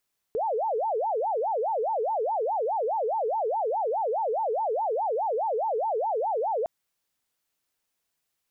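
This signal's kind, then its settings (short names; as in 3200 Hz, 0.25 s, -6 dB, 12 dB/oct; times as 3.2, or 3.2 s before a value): siren wail 426–908 Hz 4.8/s sine -24 dBFS 6.31 s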